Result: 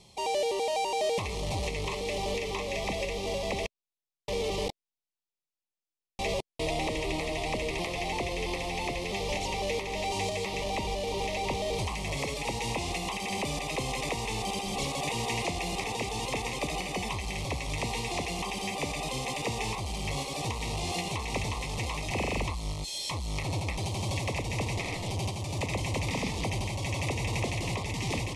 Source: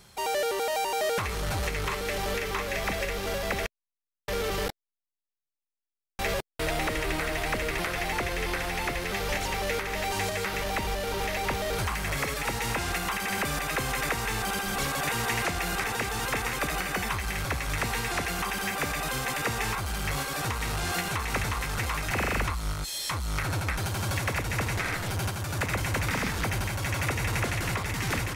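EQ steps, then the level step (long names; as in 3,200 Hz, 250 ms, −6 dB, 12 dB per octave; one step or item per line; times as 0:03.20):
Butterworth band-reject 1,500 Hz, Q 1.2
Bessel low-pass filter 7,600 Hz, order 8
low-shelf EQ 78 Hz −5 dB
0.0 dB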